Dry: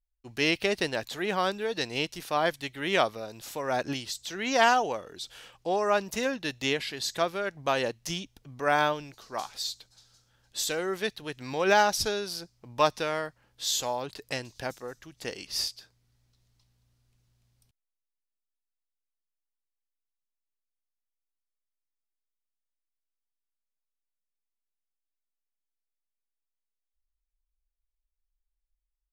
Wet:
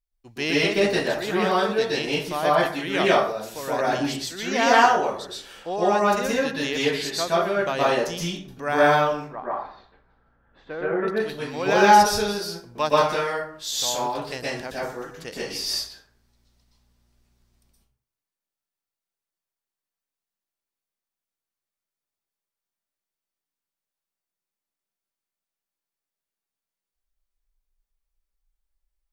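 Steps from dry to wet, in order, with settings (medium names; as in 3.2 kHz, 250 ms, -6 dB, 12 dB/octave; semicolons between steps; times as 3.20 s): 9.13–11.08 s: low-pass 1.8 kHz 24 dB/octave; plate-style reverb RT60 0.55 s, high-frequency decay 0.55×, pre-delay 110 ms, DRR -7 dB; trim -1.5 dB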